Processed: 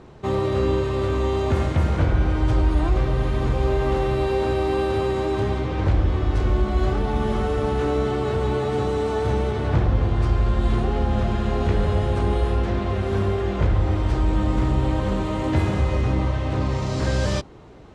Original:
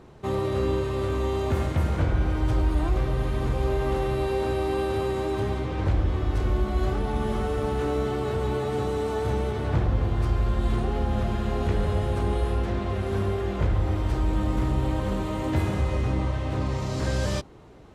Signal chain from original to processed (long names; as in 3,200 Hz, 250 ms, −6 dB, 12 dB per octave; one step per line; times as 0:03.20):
low-pass filter 7,700 Hz 12 dB per octave
level +4 dB